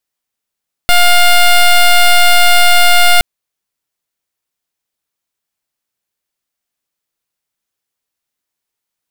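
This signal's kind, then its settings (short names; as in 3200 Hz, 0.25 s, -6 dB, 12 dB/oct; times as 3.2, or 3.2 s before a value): pulse 707 Hz, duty 11% -6 dBFS 2.32 s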